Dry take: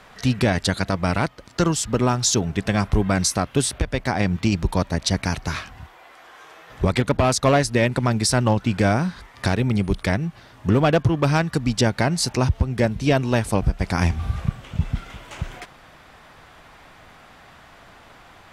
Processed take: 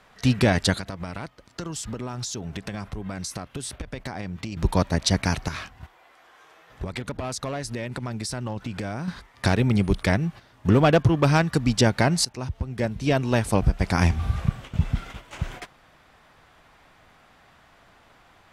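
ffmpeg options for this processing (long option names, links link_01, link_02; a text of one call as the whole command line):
ffmpeg -i in.wav -filter_complex "[0:a]asettb=1/sr,asplit=3[link_01][link_02][link_03];[link_01]atrim=end=0.764[link_04];[link_02]atrim=start=0.76:end=4.57,asetpts=PTS-STARTPTS,afade=type=in:duration=0.004:curve=qsin,afade=type=out:start_time=3.806:duration=0.004:curve=qsin,acompressor=threshold=-28dB:ratio=20:attack=3.2:release=140:knee=1:detection=peak[link_05];[link_03]atrim=start=4.566[link_06];[link_04][link_05]acrossfade=duration=0.004:curve1=hsin:curve2=qsin[link_07];[link_07][link_06]acrossfade=duration=0.004:curve1=qsin:curve2=hsin,asettb=1/sr,asplit=3[link_08][link_09][link_10];[link_08]atrim=end=5.484[link_11];[link_09]atrim=start=5.48:end=9.08,asetpts=PTS-STARTPTS,afade=type=in:duration=0.004:curve=qsin,afade=type=out:start_time=3.596:duration=0.004:curve=qsin,acompressor=threshold=-28dB:ratio=6:attack=3.2:release=140:knee=1:detection=peak[link_12];[link_10]atrim=start=9.076[link_13];[link_11][link_12]acrossfade=duration=0.004:curve1=hsin:curve2=qsin[link_14];[link_14][link_13]acrossfade=duration=0.004:curve1=qsin:curve2=hsin,asplit=2[link_15][link_16];[link_15]atrim=end=12.25,asetpts=PTS-STARTPTS,afade=type=out:start_time=12.246:duration=0.004:curve=hsin:silence=0.141254[link_17];[link_16]atrim=start=12.25,asetpts=PTS-STARTPTS,afade=type=in:duration=1.39:silence=0.141254[link_18];[link_17][link_18]concat=n=2:v=0:a=1,agate=range=-8dB:threshold=-37dB:ratio=16:detection=peak" out.wav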